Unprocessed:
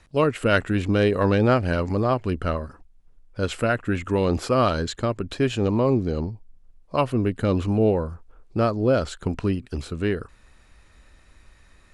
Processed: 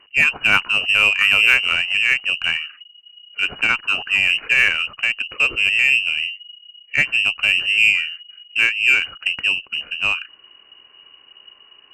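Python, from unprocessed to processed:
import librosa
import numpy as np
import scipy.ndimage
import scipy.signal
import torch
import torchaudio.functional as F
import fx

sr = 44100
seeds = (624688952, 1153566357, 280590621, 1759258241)

y = fx.freq_invert(x, sr, carrier_hz=2900)
y = fx.cheby_harmonics(y, sr, harmonics=(5, 6, 7), levels_db=(-27, -40, -25), full_scale_db=-4.5)
y = y * 10.0 ** (4.0 / 20.0)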